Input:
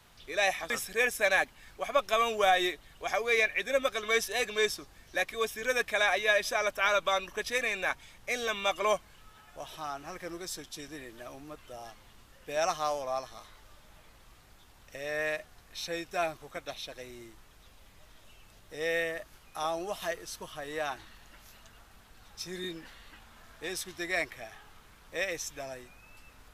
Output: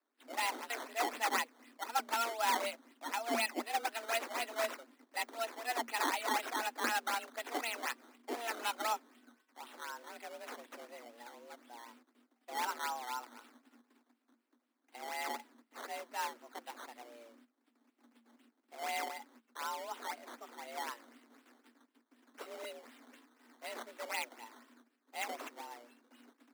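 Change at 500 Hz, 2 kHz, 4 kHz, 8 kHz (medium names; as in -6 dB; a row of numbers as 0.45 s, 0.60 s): -12.0 dB, -9.5 dB, -7.0 dB, -4.5 dB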